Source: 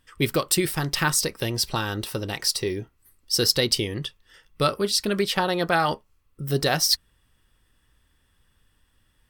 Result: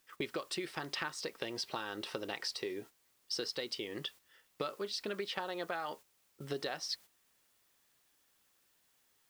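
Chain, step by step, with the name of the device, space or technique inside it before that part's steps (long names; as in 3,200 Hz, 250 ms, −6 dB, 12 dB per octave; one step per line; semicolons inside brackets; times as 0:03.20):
baby monitor (band-pass filter 320–4,100 Hz; downward compressor 10 to 1, threshold −33 dBFS, peak gain reduction 16.5 dB; white noise bed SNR 22 dB; noise gate −49 dBFS, range −9 dB)
level −2 dB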